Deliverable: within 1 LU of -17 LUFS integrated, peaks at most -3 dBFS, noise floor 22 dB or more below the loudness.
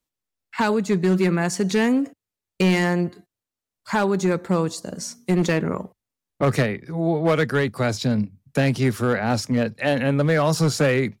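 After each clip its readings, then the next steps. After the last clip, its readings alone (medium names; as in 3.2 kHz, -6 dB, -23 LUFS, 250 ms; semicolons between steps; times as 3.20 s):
clipped samples 1.6%; clipping level -13.0 dBFS; loudness -22.0 LUFS; peak level -13.0 dBFS; loudness target -17.0 LUFS
-> clip repair -13 dBFS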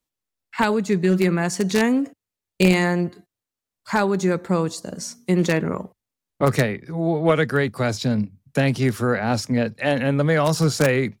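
clipped samples 0.0%; loudness -21.5 LUFS; peak level -4.0 dBFS; loudness target -17.0 LUFS
-> trim +4.5 dB; peak limiter -3 dBFS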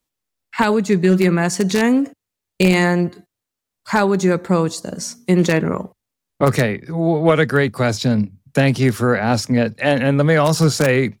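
loudness -17.5 LUFS; peak level -3.0 dBFS; noise floor -83 dBFS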